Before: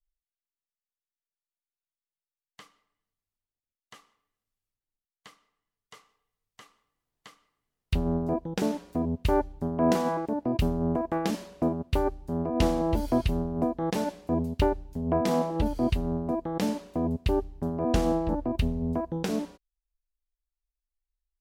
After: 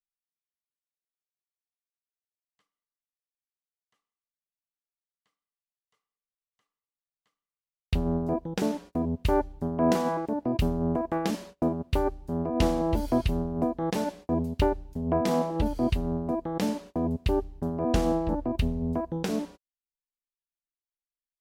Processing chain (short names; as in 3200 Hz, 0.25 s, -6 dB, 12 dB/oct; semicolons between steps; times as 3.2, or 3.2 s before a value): gate -44 dBFS, range -27 dB